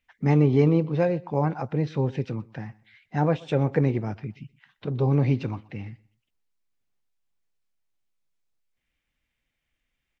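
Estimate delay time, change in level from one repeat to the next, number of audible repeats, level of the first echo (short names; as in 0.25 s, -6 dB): 0.124 s, -11.5 dB, 2, -23.0 dB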